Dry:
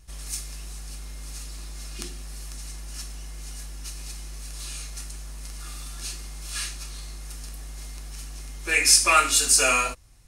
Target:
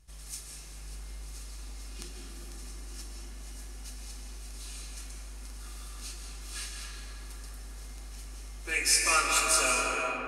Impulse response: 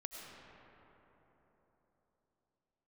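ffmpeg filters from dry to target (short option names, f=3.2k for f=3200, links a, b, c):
-filter_complex "[1:a]atrim=start_sample=2205,asetrate=27342,aresample=44100[a];[0:a][a]afir=irnorm=-1:irlink=0,volume=-5.5dB"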